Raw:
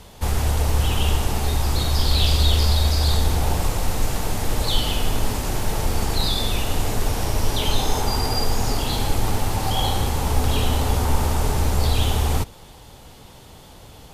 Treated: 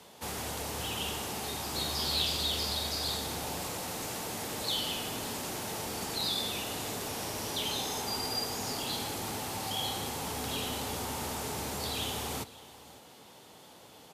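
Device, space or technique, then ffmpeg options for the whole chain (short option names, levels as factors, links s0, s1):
one-band saturation: -filter_complex "[0:a]highpass=220,acrossover=split=210|2400[s0][s1][s2];[s1]asoftclip=type=tanh:threshold=0.0316[s3];[s0][s3][s2]amix=inputs=3:normalize=0,asettb=1/sr,asplit=3[s4][s5][s6];[s4]atrim=end=1.734[s7];[s5]atrim=start=1.73:end=2.22,asetpts=PTS-STARTPTS,afade=t=in:d=0.004:c=qsin,afade=t=out:st=0.486:d=0.004:c=qsin,asplit=2[s8][s9];[s9]adelay=13,volume=0.531[s10];[s8][s10]amix=inputs=2:normalize=0,atrim=end_sample=21609[s11];[s6]atrim=start=2.216[s12];[s7][s11]acrossfade=d=0.004:c1=hsin:c2=qsin[s13];[s13][s12]acrossfade=d=0.004:c1=qsin:c2=hsin,aecho=1:1:554:0.1,volume=0.473"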